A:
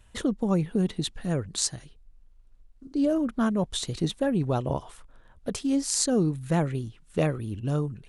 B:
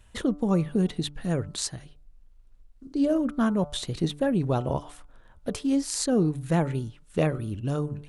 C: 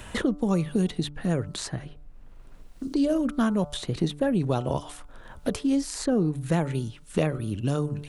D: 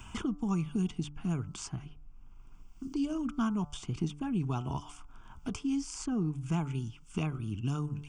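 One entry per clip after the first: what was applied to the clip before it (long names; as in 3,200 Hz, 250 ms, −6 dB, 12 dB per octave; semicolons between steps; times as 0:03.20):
dynamic equaliser 6,800 Hz, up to −6 dB, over −44 dBFS, Q 0.88; hum removal 146.3 Hz, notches 10; level +1 dB
multiband upward and downward compressor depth 70%
phaser with its sweep stopped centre 2,700 Hz, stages 8; level −4.5 dB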